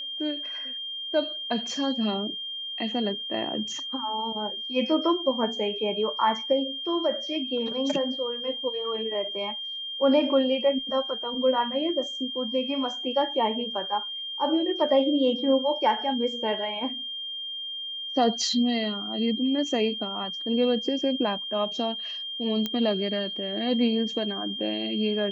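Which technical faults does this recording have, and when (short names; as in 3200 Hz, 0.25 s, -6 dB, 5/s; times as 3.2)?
tone 3200 Hz -32 dBFS
22.66 pop -14 dBFS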